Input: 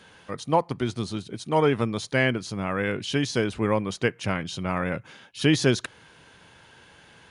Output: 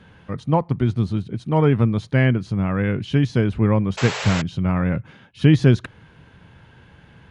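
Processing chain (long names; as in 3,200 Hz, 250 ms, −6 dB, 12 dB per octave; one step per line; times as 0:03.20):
sound drawn into the spectrogram noise, 0:03.97–0:04.42, 390–7,900 Hz −24 dBFS
bass and treble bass +13 dB, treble −13 dB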